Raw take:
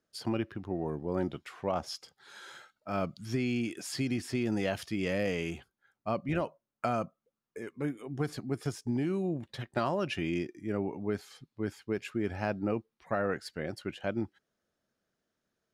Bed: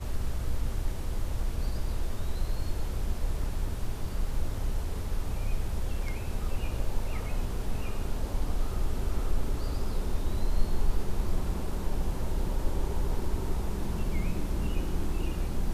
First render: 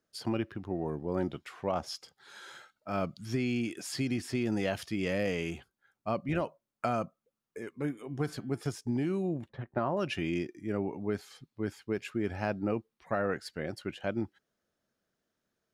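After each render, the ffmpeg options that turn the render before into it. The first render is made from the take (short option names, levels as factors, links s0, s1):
-filter_complex "[0:a]asettb=1/sr,asplit=3[s0][s1][s2];[s0]atrim=end=7.824[s3];[s1]atrim=start=7.82:end=8.61,asetpts=PTS-STARTPTS,afade=t=in:d=0.004:c=qsin,afade=t=out:st=0.786:d=0.004:c=qsin,bandreject=f=170.2:t=h:w=4,bandreject=f=340.4:t=h:w=4,bandreject=f=510.6:t=h:w=4,bandreject=f=680.8:t=h:w=4,bandreject=f=851:t=h:w=4,bandreject=f=1021.2:t=h:w=4,bandreject=f=1191.4:t=h:w=4,bandreject=f=1361.6:t=h:w=4,bandreject=f=1531.8:t=h:w=4,bandreject=f=1702:t=h:w=4,bandreject=f=1872.2:t=h:w=4,bandreject=f=2042.4:t=h:w=4,bandreject=f=2212.6:t=h:w=4,bandreject=f=2382.8:t=h:w=4,bandreject=f=2553:t=h:w=4,bandreject=f=2723.2:t=h:w=4,bandreject=f=2893.4:t=h:w=4,bandreject=f=3063.6:t=h:w=4,bandreject=f=3233.8:t=h:w=4,bandreject=f=3404:t=h:w=4[s4];[s2]atrim=start=8.606[s5];[s3][s4]acrossfade=d=0.004:c1=hsin:c2=qsin[s6];[s6][s5]acrossfade=d=0.004:c1=qsin:c2=hsin,asettb=1/sr,asplit=3[s7][s8][s9];[s7]atrim=end=9.494[s10];[s8]atrim=start=9.49:end=9.97,asetpts=PTS-STARTPTS,afade=t=in:d=0.004:c=qsin,afade=t=out:st=0.476:d=0.004:c=qsin,lowpass=1400[s11];[s9]atrim=start=9.966[s12];[s10][s11]acrossfade=d=0.004:c1=hsin:c2=qsin[s13];[s13][s12]acrossfade=d=0.004:c1=qsin:c2=hsin"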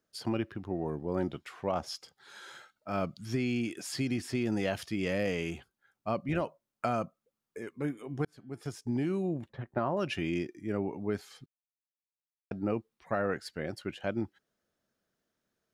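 -filter_complex "[0:a]asplit=4[s0][s1][s2][s3];[s0]atrim=end=8.25,asetpts=PTS-STARTPTS,afade=t=out:st=8.246:d=0.004:c=hsin[s4];[s1]atrim=start=8.25:end=11.46,asetpts=PTS-STARTPTS,afade=t=in:d=0.71,afade=t=out:st=3.206:d=0.004:c=hsin[s5];[s2]atrim=start=11.46:end=12.51,asetpts=PTS-STARTPTS,volume=0[s6];[s3]atrim=start=12.51,asetpts=PTS-STARTPTS,afade=t=in:d=0.004:c=hsin[s7];[s4][s5][s6][s7]concat=n=4:v=0:a=1"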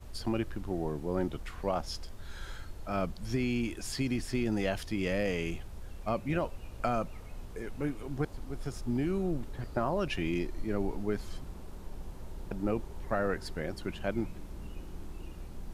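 -filter_complex "[1:a]volume=0.224[s0];[0:a][s0]amix=inputs=2:normalize=0"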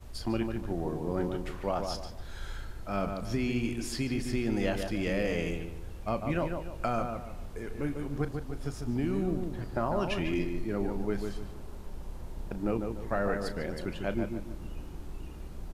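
-filter_complex "[0:a]asplit=2[s0][s1];[s1]adelay=35,volume=0.224[s2];[s0][s2]amix=inputs=2:normalize=0,asplit=2[s3][s4];[s4]adelay=147,lowpass=f=2000:p=1,volume=0.562,asplit=2[s5][s6];[s6]adelay=147,lowpass=f=2000:p=1,volume=0.37,asplit=2[s7][s8];[s8]adelay=147,lowpass=f=2000:p=1,volume=0.37,asplit=2[s9][s10];[s10]adelay=147,lowpass=f=2000:p=1,volume=0.37,asplit=2[s11][s12];[s12]adelay=147,lowpass=f=2000:p=1,volume=0.37[s13];[s5][s7][s9][s11][s13]amix=inputs=5:normalize=0[s14];[s3][s14]amix=inputs=2:normalize=0"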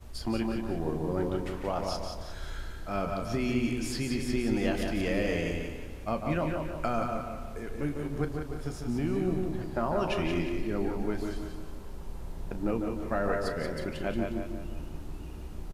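-filter_complex "[0:a]asplit=2[s0][s1];[s1]adelay=13,volume=0.266[s2];[s0][s2]amix=inputs=2:normalize=0,asplit=2[s3][s4];[s4]aecho=0:1:179|358|537|716|895:0.501|0.205|0.0842|0.0345|0.0142[s5];[s3][s5]amix=inputs=2:normalize=0"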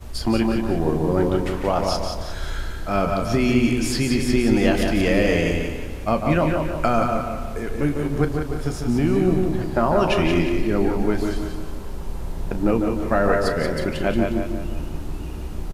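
-af "volume=3.35"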